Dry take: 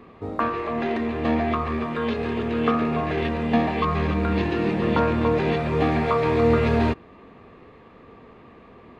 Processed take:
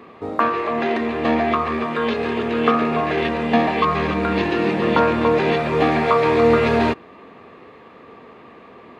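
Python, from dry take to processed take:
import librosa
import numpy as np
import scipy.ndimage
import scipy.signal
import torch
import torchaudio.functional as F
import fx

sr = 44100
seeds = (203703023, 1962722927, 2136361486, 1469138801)

y = fx.highpass(x, sr, hz=310.0, slope=6)
y = y * librosa.db_to_amplitude(6.5)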